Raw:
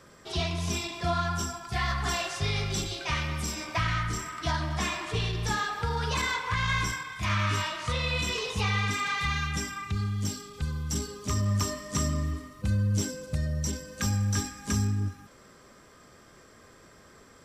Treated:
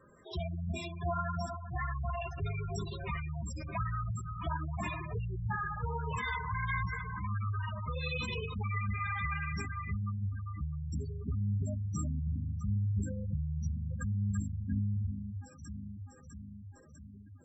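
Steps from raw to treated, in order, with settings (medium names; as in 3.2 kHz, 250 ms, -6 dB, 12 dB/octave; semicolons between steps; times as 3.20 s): echo whose repeats swap between lows and highs 326 ms, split 1 kHz, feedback 79%, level -6 dB; spectral gate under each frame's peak -10 dB strong; trim -5 dB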